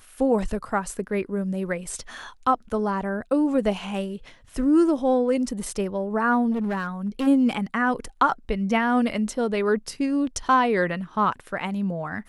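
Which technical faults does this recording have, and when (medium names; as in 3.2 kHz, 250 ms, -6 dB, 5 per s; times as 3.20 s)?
6.51–7.28 s: clipped -22 dBFS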